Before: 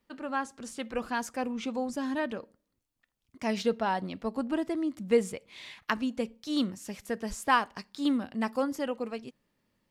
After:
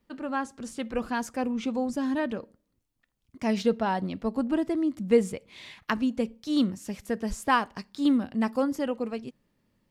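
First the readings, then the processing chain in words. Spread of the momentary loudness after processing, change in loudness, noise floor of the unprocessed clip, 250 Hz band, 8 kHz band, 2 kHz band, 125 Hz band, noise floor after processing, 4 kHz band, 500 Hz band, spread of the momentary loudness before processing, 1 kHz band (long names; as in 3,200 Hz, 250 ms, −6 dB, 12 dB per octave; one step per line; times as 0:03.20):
12 LU, +3.0 dB, −81 dBFS, +5.0 dB, 0.0 dB, +0.5 dB, +5.5 dB, −76 dBFS, 0.0 dB, +2.5 dB, 12 LU, +1.0 dB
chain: low-shelf EQ 390 Hz +7 dB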